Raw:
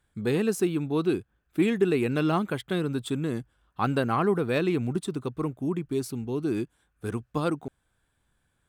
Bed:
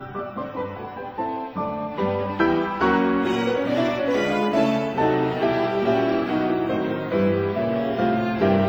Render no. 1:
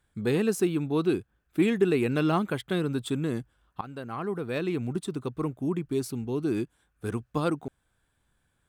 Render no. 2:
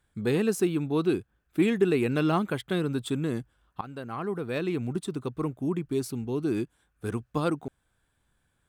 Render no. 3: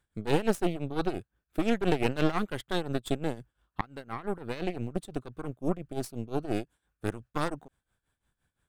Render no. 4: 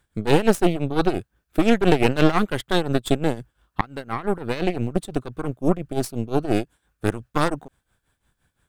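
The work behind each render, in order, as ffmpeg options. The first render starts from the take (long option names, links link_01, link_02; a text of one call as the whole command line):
ffmpeg -i in.wav -filter_complex "[0:a]asplit=2[link_01][link_02];[link_01]atrim=end=3.81,asetpts=PTS-STARTPTS,afade=type=out:start_time=3.806:duration=0.004:curve=hsin:silence=0.105925[link_03];[link_02]atrim=start=3.81,asetpts=PTS-STARTPTS,afade=type=in:duration=2.13:curve=qsin:silence=0.105925[link_04];[link_03][link_04]concat=n=2:v=0:a=1" out.wav
ffmpeg -i in.wav -af anull out.wav
ffmpeg -i in.wav -af "aeval=exprs='0.282*(cos(1*acos(clip(val(0)/0.282,-1,1)))-cos(1*PI/2))+0.0631*(cos(6*acos(clip(val(0)/0.282,-1,1)))-cos(6*PI/2))+0.0112*(cos(7*acos(clip(val(0)/0.282,-1,1)))-cos(7*PI/2))':channel_layout=same,tremolo=f=5.8:d=0.81" out.wav
ffmpeg -i in.wav -af "volume=9.5dB,alimiter=limit=-3dB:level=0:latency=1" out.wav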